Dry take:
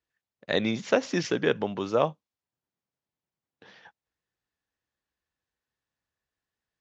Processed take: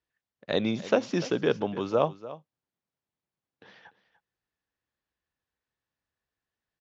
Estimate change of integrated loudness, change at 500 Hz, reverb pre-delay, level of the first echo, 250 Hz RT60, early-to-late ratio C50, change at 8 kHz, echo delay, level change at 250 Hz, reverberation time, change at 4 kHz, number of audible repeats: -0.5 dB, 0.0 dB, none, -16.0 dB, none, none, n/a, 0.294 s, 0.0 dB, none, -2.5 dB, 1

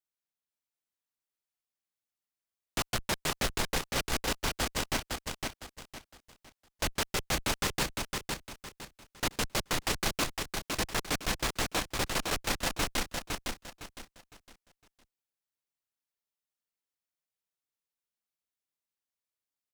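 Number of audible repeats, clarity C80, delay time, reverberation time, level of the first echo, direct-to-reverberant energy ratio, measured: 4, none, 0.509 s, none, -4.0 dB, none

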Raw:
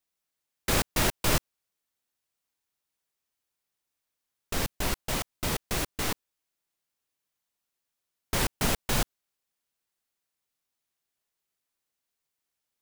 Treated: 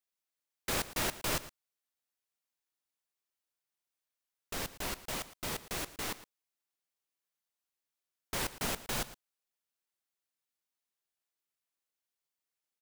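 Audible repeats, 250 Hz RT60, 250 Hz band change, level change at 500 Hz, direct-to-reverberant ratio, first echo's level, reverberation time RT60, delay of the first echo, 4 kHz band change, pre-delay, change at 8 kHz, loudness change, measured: 1, none, -9.5 dB, -7.5 dB, none, -16.5 dB, none, 0.113 s, -6.5 dB, none, -6.5 dB, -7.0 dB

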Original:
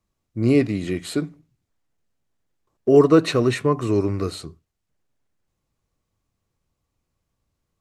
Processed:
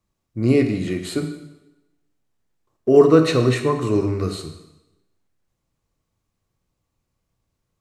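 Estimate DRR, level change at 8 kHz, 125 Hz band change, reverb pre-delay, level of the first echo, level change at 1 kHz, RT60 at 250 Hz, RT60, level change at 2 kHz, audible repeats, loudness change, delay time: 6.0 dB, +1.0 dB, +2.0 dB, 8 ms, none, +1.0 dB, 0.95 s, 1.0 s, +1.0 dB, none, +1.5 dB, none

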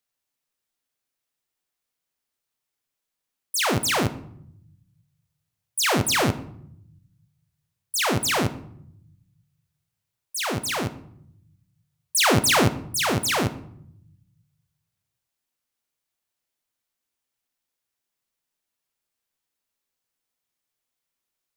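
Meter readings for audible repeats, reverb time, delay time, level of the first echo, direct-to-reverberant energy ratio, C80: none, 0.70 s, none, none, 10.5 dB, 17.5 dB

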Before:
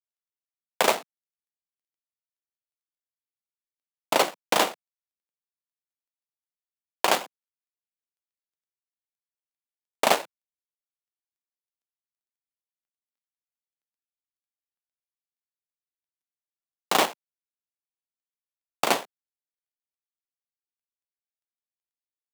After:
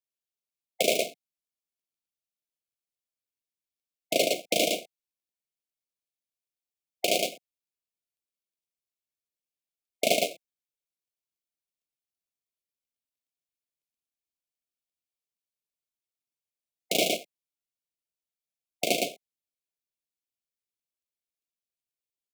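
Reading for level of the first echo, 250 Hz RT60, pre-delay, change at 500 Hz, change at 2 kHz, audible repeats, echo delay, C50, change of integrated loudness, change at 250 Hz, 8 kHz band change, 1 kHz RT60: -3.0 dB, none, none, 0.0 dB, -3.5 dB, 1, 0.112 s, none, -2.5 dB, +0.5 dB, +0.5 dB, none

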